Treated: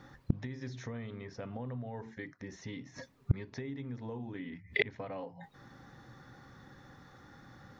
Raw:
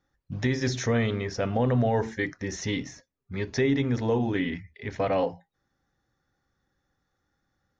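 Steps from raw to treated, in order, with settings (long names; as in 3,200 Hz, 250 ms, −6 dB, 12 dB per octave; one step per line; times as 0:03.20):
octave-band graphic EQ 125/250/500/1,000/2,000/4,000 Hz +12/+9/+5/+10/+6/+6 dB
downward compressor 4 to 1, threshold −17 dBFS, peak gain reduction 9.5 dB
gate with flip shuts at −24 dBFS, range −33 dB
level +11.5 dB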